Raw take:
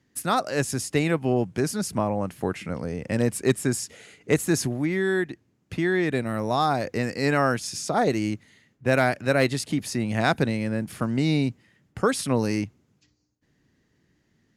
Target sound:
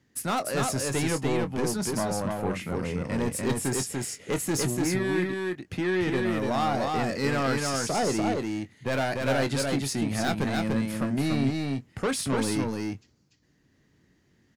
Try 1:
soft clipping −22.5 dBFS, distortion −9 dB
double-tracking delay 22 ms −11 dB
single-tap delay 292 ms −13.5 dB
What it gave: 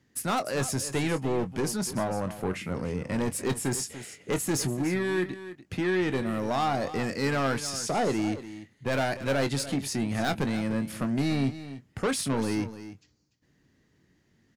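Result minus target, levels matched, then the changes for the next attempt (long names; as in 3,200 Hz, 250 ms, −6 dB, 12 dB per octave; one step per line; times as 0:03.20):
echo-to-direct −10.5 dB
change: single-tap delay 292 ms −3 dB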